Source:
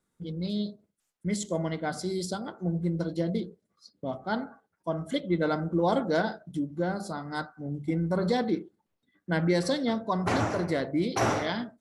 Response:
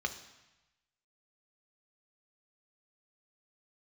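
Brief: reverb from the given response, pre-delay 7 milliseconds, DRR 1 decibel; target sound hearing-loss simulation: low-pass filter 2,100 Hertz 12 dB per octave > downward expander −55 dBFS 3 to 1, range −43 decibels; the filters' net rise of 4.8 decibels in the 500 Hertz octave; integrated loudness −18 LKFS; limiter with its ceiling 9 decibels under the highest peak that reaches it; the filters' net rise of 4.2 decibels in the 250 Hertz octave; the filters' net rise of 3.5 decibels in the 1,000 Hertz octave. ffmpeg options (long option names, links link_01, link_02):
-filter_complex "[0:a]equalizer=frequency=250:width_type=o:gain=4.5,equalizer=frequency=500:width_type=o:gain=4,equalizer=frequency=1000:width_type=o:gain=3,alimiter=limit=-18.5dB:level=0:latency=1,asplit=2[link_01][link_02];[1:a]atrim=start_sample=2205,adelay=7[link_03];[link_02][link_03]afir=irnorm=-1:irlink=0,volume=-5dB[link_04];[link_01][link_04]amix=inputs=2:normalize=0,lowpass=2100,agate=range=-43dB:threshold=-55dB:ratio=3,volume=9.5dB"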